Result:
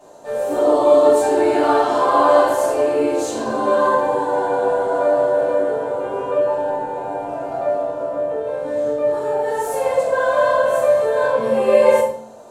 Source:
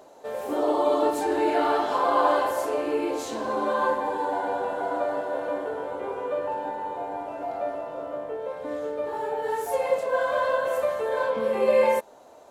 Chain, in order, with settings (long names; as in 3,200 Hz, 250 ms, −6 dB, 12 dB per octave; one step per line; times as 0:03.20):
graphic EQ with 10 bands 125 Hz +8 dB, 500 Hz +4 dB, 1,000 Hz +4 dB, 8,000 Hz +9 dB
convolution reverb RT60 0.65 s, pre-delay 3 ms, DRR −9.5 dB
level −10 dB